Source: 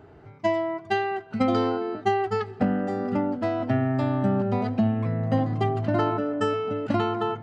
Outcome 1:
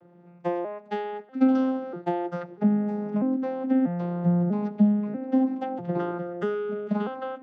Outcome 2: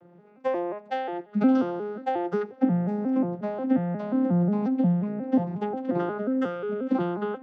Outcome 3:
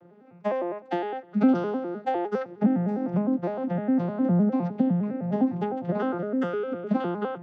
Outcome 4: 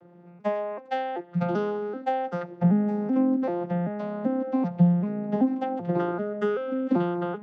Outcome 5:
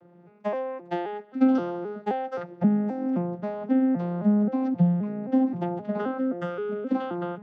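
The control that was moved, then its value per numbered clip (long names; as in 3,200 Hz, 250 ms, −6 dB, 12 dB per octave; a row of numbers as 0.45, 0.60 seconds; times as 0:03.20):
vocoder with an arpeggio as carrier, a note every: 642, 179, 102, 386, 263 milliseconds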